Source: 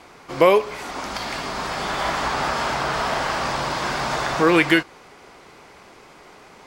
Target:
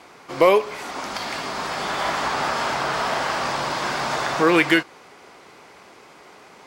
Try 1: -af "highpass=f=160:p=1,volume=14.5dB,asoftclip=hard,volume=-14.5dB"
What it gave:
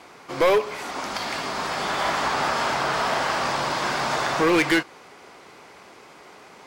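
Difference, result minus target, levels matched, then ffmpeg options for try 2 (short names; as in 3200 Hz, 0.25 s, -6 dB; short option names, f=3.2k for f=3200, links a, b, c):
overloaded stage: distortion +18 dB
-af "highpass=f=160:p=1,volume=6dB,asoftclip=hard,volume=-6dB"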